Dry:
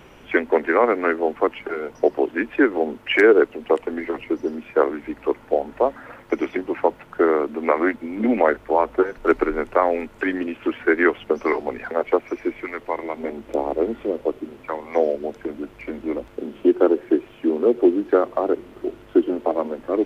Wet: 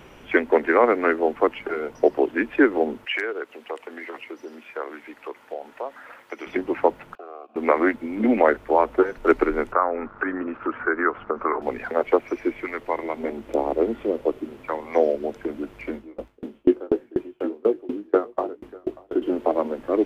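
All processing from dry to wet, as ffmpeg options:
-filter_complex "[0:a]asettb=1/sr,asplit=3[a][b][c];[a]atrim=end=3.054[d];[b]atrim=start=3.05:end=6.47,asetpts=PTS-STARTPTS,afade=t=in:d=0.004:c=qsin,afade=t=out:st=3.416:d=0.004:c=qsin,acompressor=threshold=-24dB:ratio=2:attack=3.2:release=140:knee=1:detection=peak,highpass=f=1.1k:p=1[e];[c]atrim=start=6.466[f];[d][e]acrossfade=d=0.004:c1=hsin:c2=qsin[g];[g][f]acrossfade=d=0.004:c1=qsin:c2=hsin,asettb=1/sr,asplit=3[h][i][j];[h]atrim=end=7.154[k];[i]atrim=start=7.15:end=7.56,asetpts=PTS-STARTPTS,afade=t=in:d=0.004:c=qsin,afade=t=out:st=0.406:d=0.004:c=qsin,acompressor=threshold=-25dB:ratio=2.5:attack=3.2:release=140:knee=1:detection=peak,aeval=exprs='sgn(val(0))*max(abs(val(0))-0.00708,0)':c=same,asplit=3[l][m][n];[l]bandpass=f=730:t=q:w=8,volume=0dB[o];[m]bandpass=f=1.09k:t=q:w=8,volume=-6dB[p];[n]bandpass=f=2.44k:t=q:w=8,volume=-9dB[q];[o][p][q]amix=inputs=3:normalize=0[r];[j]atrim=start=7.556[s];[k][r]acrossfade=d=0.004:c1=hsin:c2=qsin[t];[t][s]acrossfade=d=0.004:c1=qsin:c2=hsin,asettb=1/sr,asplit=3[u][v][w];[u]atrim=end=9.724[x];[v]atrim=start=9.72:end=11.62,asetpts=PTS-STARTPTS,afade=t=in:d=0.004:c=qsin,afade=t=out:st=1.896:d=0.004:c=qsin,acompressor=threshold=-27dB:ratio=2:attack=3.2:release=140:knee=1:detection=peak,aeval=exprs='val(0)*gte(abs(val(0)),0.00501)':c=same,lowpass=f=1.3k:t=q:w=4.2[y];[w]atrim=start=11.616[z];[x][y]acrossfade=d=0.004:c1=hsin:c2=qsin[aa];[aa][z]acrossfade=d=0.004:c1=qsin:c2=hsin,asettb=1/sr,asplit=3[ab][ac][ad];[ab]atrim=end=15.944[ae];[ac]atrim=start=15.94:end=19.22,asetpts=PTS-STARTPTS,afade=t=in:d=0.004:c=qsin,afade=t=out:st=3.276:d=0.004:c=qsin,asplit=2[af][ag];[ag]adelay=19,volume=-7dB[ah];[af][ah]amix=inputs=2:normalize=0,atrim=end_sample=144648,aecho=1:1:599:0.316,atrim=end_sample=144648,aeval=exprs='val(0)*pow(10,-30*if(lt(mod(4.1*n/s,1),2*abs(4.1)/1000),1-mod(4.1*n/s,1)/(2*abs(4.1)/1000),(mod(4.1*n/s,1)-2*abs(4.1)/1000)/(1-2*abs(4.1)/1000))/20)':c=same[ai];[ad]atrim=start=19.216[aj];[ae][ai]acrossfade=d=0.004:c1=hsin:c2=qsin[ak];[ak][aj]acrossfade=d=0.004:c1=qsin:c2=hsin"

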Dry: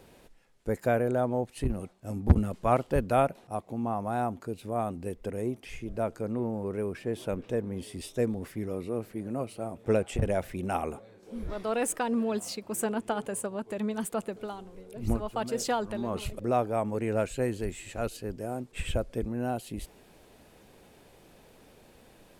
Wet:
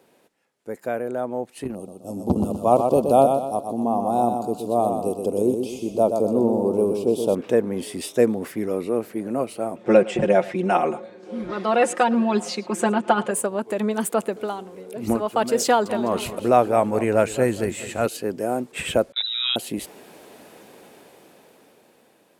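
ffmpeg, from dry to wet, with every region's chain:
-filter_complex "[0:a]asettb=1/sr,asplit=3[a][b][c];[a]atrim=end=1.754[d];[b]atrim=start=1.75:end=7.35,asetpts=PTS-STARTPTS,afade=t=in:d=0.004:c=qsin,afade=t=out:st=5.596:d=0.004:c=qsin,asuperstop=centerf=1800:order=4:qfactor=0.72,aecho=1:1:124|248|372|496|620:0.501|0.2|0.0802|0.0321|0.0128,atrim=end_sample=246960[e];[c]atrim=start=7.346[f];[d][e]acrossfade=d=0.004:c1=hsin:c2=qsin[g];[g][f]acrossfade=d=0.004:c1=qsin:c2=hsin,asettb=1/sr,asplit=3[h][i][j];[h]atrim=end=9.764[k];[i]atrim=start=9.76:end=13.31,asetpts=PTS-STARTPTS,afade=t=in:d=0.004:c=qsin,afade=t=out:st=3.546:d=0.004:c=qsin,lowpass=5.2k,aecho=1:1:5.6:0.86,atrim=end_sample=156555,aecho=1:1:110:0.0944,atrim=end_sample=156555[l];[j]atrim=start=13.306[m];[k][l]acrossfade=d=0.004:c1=hsin:c2=qsin[n];[n][m]acrossfade=d=0.004:c1=qsin:c2=hsin,asettb=1/sr,asplit=3[o][p][q];[o]atrim=end=15.654[r];[p]atrim=start=15.65:end=18.06,asetpts=PTS-STARTPTS,afade=t=in:d=0.004:c=qsin,afade=t=out:st=2.406:d=0.004:c=qsin,asubboost=boost=5:cutoff=150,aecho=1:1:206|412|618|824:0.178|0.0836|0.0393|0.0185,atrim=end_sample=106281[s];[q]atrim=start=18.056[t];[r][s]acrossfade=d=0.004:c1=hsin:c2=qsin[u];[u][t]acrossfade=d=0.004:c1=qsin:c2=hsin,asettb=1/sr,asplit=3[v][w][x];[v]atrim=end=19.124[y];[w]atrim=start=19.12:end=19.56,asetpts=PTS-STARTPTS,afade=t=in:d=0.004:c=qsin,afade=t=out:st=0.436:d=0.004:c=qsin,tiltshelf=f=1.4k:g=-5,lowpass=f=3.4k:t=q:w=0.5098,lowpass=f=3.4k:t=q:w=0.6013,lowpass=f=3.4k:t=q:w=0.9,lowpass=f=3.4k:t=q:w=2.563,afreqshift=-4000,agate=range=-24dB:threshold=-43dB:ratio=16:release=100:detection=peak[z];[x]atrim=start=19.556[aa];[y][z]acrossfade=d=0.004:c1=hsin:c2=qsin[ab];[ab][aa]acrossfade=d=0.004:c1=qsin:c2=hsin,highpass=230,equalizer=f=4.1k:t=o:w=2:g=-2.5,dynaudnorm=f=410:g=9:m=15dB,volume=-1.5dB"

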